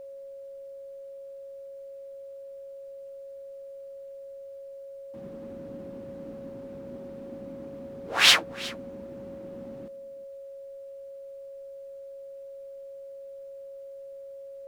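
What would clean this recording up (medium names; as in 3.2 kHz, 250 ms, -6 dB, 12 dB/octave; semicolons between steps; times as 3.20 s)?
band-stop 550 Hz, Q 30; expander -35 dBFS, range -21 dB; inverse comb 364 ms -19.5 dB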